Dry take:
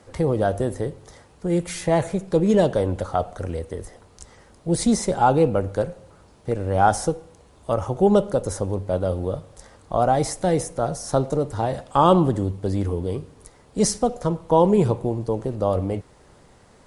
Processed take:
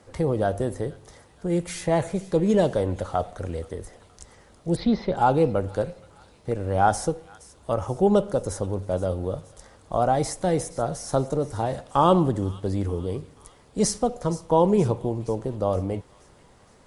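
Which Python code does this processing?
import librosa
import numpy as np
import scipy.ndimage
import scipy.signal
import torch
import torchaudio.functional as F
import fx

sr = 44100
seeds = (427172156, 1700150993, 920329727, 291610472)

y = fx.steep_lowpass(x, sr, hz=4400.0, slope=48, at=(4.75, 5.16), fade=0.02)
y = fx.echo_wet_highpass(y, sr, ms=472, feedback_pct=56, hz=2000.0, wet_db=-16)
y = y * 10.0 ** (-2.5 / 20.0)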